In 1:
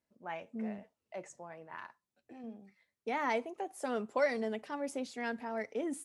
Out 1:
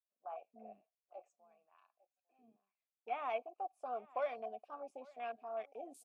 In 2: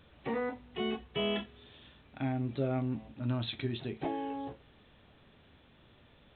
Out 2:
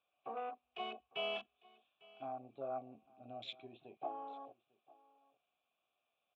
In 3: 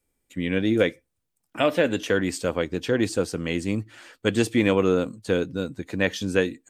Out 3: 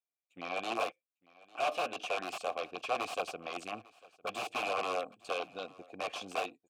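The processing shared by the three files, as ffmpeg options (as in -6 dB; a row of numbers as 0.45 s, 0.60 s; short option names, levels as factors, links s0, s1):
-filter_complex "[0:a]crystalizer=i=6:c=0,aeval=exprs='(mod(5.31*val(0)+1,2)-1)/5.31':c=same,afwtdn=0.0178,asplit=3[s0][s1][s2];[s0]bandpass=f=730:t=q:w=8,volume=1[s3];[s1]bandpass=f=1090:t=q:w=8,volume=0.501[s4];[s2]bandpass=f=2440:t=q:w=8,volume=0.355[s5];[s3][s4][s5]amix=inputs=3:normalize=0,aecho=1:1:850:0.0708,volume=1.19"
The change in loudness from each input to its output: -6.0 LU, -9.5 LU, -12.5 LU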